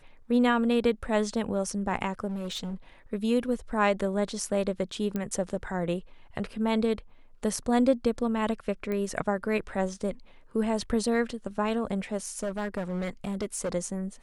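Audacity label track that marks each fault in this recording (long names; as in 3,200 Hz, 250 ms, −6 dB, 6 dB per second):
2.270000	2.750000	clipping −30 dBFS
5.160000	5.160000	click −18 dBFS
8.920000	8.920000	click −21 dBFS
12.260000	13.720000	clipping −26 dBFS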